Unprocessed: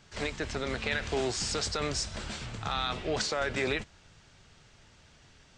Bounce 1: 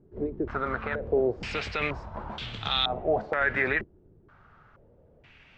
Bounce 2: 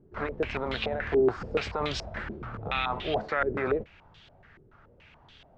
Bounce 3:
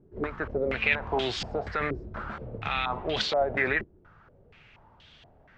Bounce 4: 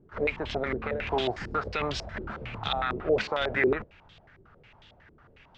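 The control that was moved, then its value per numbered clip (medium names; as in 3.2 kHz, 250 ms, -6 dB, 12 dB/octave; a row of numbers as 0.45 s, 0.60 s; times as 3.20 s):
step-sequenced low-pass, rate: 2.1 Hz, 7 Hz, 4.2 Hz, 11 Hz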